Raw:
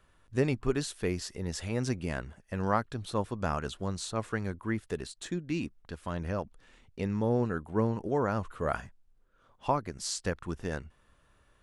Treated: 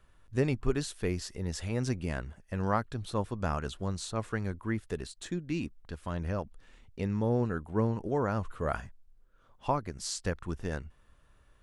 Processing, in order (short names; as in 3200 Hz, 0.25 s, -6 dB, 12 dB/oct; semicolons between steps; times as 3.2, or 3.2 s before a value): low shelf 81 Hz +8 dB; gain -1.5 dB